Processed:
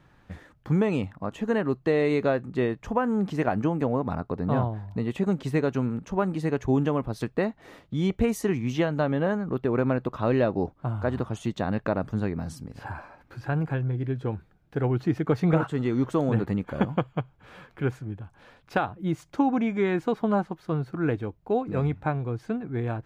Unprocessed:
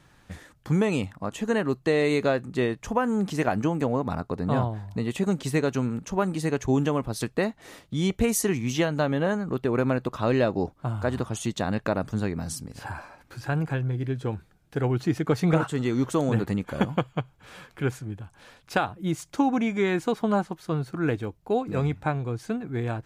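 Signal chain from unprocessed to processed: bell 9500 Hz -14 dB 2.2 oct

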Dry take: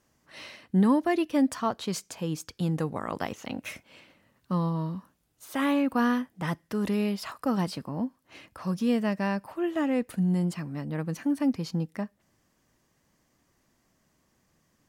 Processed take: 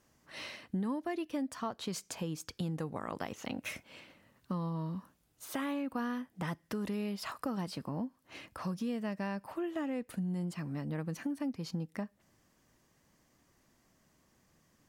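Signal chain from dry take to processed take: compressor 4:1, threshold -35 dBFS, peak gain reduction 14 dB

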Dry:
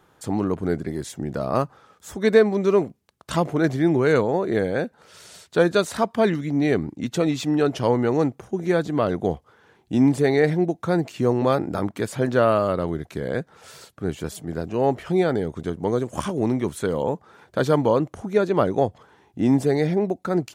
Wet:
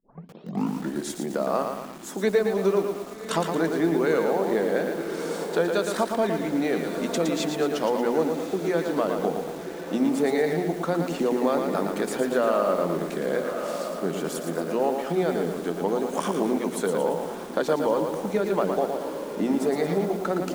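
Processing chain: tape start at the beginning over 1.04 s; elliptic high-pass 170 Hz, stop band 40 dB; bell 740 Hz +3.5 dB 2 oct; on a send: diffused feedback echo 1.166 s, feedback 46%, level -14 dB; on the sum: compressor 3:1, threshold -22 dBFS, peak gain reduction 11 dB; high shelf 3600 Hz +3 dB; notches 60/120/180/240/300/360/420 Hz; lo-fi delay 0.114 s, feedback 55%, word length 7-bit, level -5 dB

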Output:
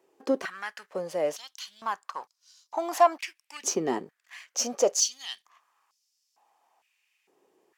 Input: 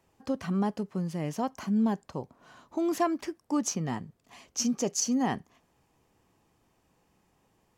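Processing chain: sample leveller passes 1; stepped high-pass 2.2 Hz 380–5100 Hz

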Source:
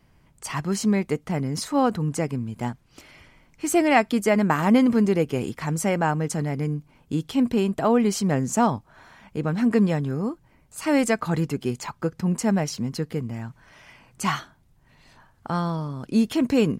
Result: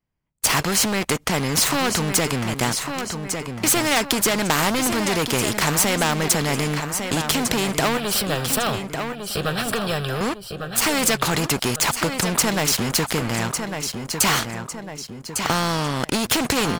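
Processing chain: gate -45 dBFS, range -30 dB; sample leveller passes 3; compressor, threshold -14 dBFS, peak gain reduction 6 dB; 7.97–10.21 fixed phaser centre 1400 Hz, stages 8; feedback echo 1.152 s, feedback 30%, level -13 dB; spectral compressor 2:1; gain +6.5 dB

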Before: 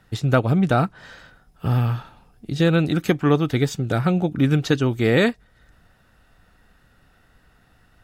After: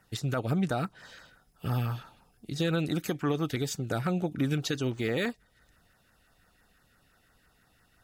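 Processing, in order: tilt +1.5 dB/oct; limiter -13 dBFS, peak gain reduction 8.5 dB; LFO notch saw down 5.9 Hz 650–4000 Hz; 4.9–5.3 decimation joined by straight lines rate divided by 3×; gain -5.5 dB

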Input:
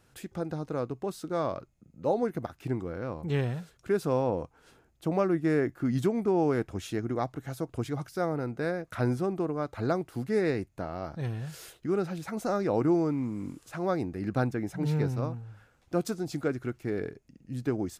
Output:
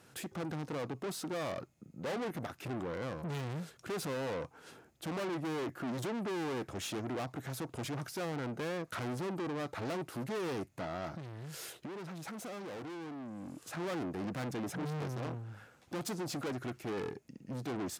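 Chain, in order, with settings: tube stage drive 41 dB, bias 0.35; HPF 130 Hz 12 dB/oct; 11.16–13.77 compressor, threshold -47 dBFS, peak gain reduction 7.5 dB; gain +6 dB

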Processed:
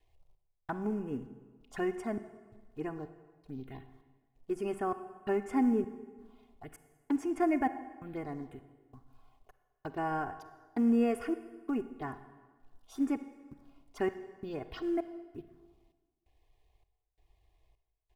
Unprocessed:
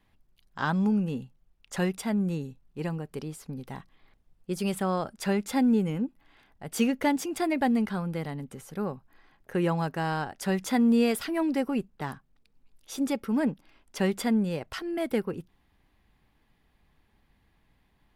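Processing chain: step gate "xxx...xx" 131 bpm -60 dB; comb 2.8 ms, depth 79%; companded quantiser 6-bit; tone controls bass +1 dB, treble -13 dB; envelope phaser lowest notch 220 Hz, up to 3900 Hz, full sweep at -29.5 dBFS; reverb RT60 1.4 s, pre-delay 33 ms, DRR 11.5 dB; gain -5 dB

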